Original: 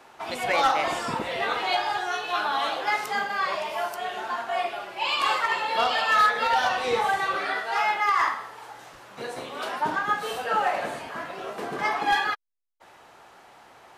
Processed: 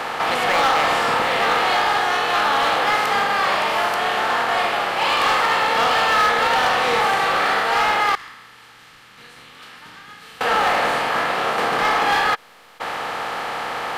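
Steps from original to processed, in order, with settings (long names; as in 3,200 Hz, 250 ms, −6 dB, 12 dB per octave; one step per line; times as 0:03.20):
compressor on every frequency bin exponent 0.4
0:08.15–0:10.41: guitar amp tone stack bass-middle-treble 6-0-2
hard clipping −13 dBFS, distortion −17 dB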